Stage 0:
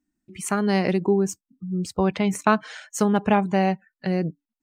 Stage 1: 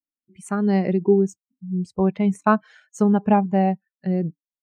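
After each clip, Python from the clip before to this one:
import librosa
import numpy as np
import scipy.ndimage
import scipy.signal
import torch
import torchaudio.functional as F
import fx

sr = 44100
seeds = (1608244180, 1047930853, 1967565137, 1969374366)

y = fx.spectral_expand(x, sr, expansion=1.5)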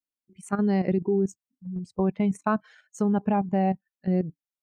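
y = fx.level_steps(x, sr, step_db=11)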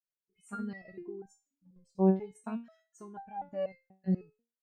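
y = fx.resonator_held(x, sr, hz=4.1, low_hz=190.0, high_hz=790.0)
y = F.gain(torch.from_numpy(y), 2.5).numpy()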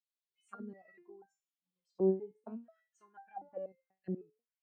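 y = fx.auto_wah(x, sr, base_hz=340.0, top_hz=3900.0, q=2.8, full_db=-34.5, direction='down')
y = F.gain(torch.from_numpy(y), 1.0).numpy()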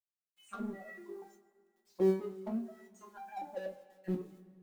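y = fx.law_mismatch(x, sr, coded='mu')
y = fx.rev_double_slope(y, sr, seeds[0], early_s=0.21, late_s=2.0, knee_db=-21, drr_db=-0.5)
y = F.gain(torch.from_numpy(y), -1.0).numpy()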